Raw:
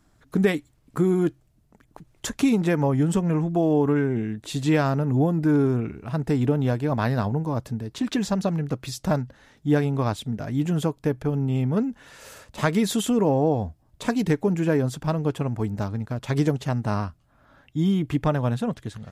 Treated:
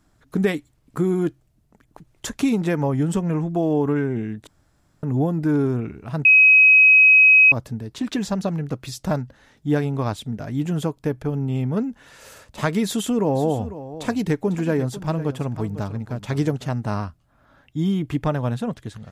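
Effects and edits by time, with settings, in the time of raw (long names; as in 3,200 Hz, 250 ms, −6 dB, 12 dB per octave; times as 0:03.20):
0:04.47–0:05.03: fill with room tone
0:06.25–0:07.52: beep over 2,540 Hz −8.5 dBFS
0:12.85–0:16.72: single-tap delay 498 ms −14 dB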